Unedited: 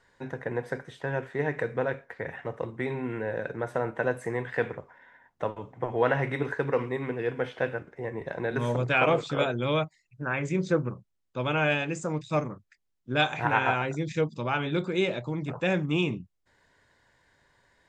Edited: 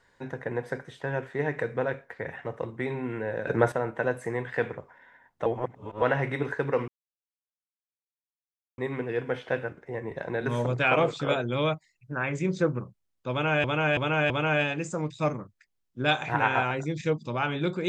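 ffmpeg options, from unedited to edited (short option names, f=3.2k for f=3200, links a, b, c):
-filter_complex "[0:a]asplit=9[a][b][c][d][e][f][g][h][i];[a]atrim=end=3.472[j];[b]atrim=start=3.468:end=3.722,asetpts=PTS-STARTPTS,volume=10dB[k];[c]atrim=start=3.718:end=5.462[l];[d]atrim=start=5.458:end=6.022,asetpts=PTS-STARTPTS,areverse[m];[e]atrim=start=6.018:end=6.88,asetpts=PTS-STARTPTS,afade=t=out:st=0.858:d=0.004:c=hsin,apad=pad_dur=1.9[n];[f]atrim=start=6.88:end=11.742,asetpts=PTS-STARTPTS,afade=t=in:d=0.004:c=hsin[o];[g]atrim=start=11.408:end=11.742[p];[h]atrim=start=11.408:end=11.742[q];[i]atrim=start=11.408[r];[j][k]acrossfade=d=0.004:c1=hsin:c2=hsin[s];[s][l]acrossfade=d=0.004:c1=hsin:c2=hsin[t];[t][m]acrossfade=d=0.004:c1=hsin:c2=hsin[u];[n][o]concat=n=2:v=0:a=1[v];[u][v]acrossfade=d=0.004:c1=hsin:c2=hsin[w];[w][p]acrossfade=d=0.004:c1=hsin:c2=hsin[x];[x][q]acrossfade=d=0.004:c1=hsin:c2=hsin[y];[y][r]acrossfade=d=0.004:c1=hsin:c2=hsin"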